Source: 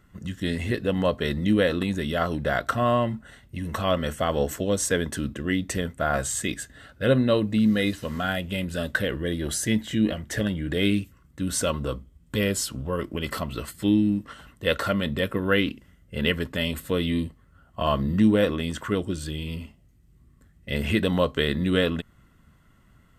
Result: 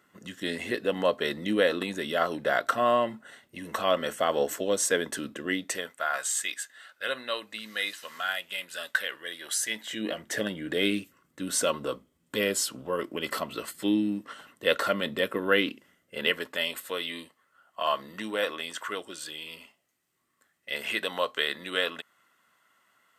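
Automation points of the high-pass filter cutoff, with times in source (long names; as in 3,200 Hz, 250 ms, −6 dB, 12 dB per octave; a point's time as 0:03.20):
0:05.54 350 Hz
0:06.09 1,100 Hz
0:09.57 1,100 Hz
0:10.25 320 Hz
0:15.70 320 Hz
0:17.00 730 Hz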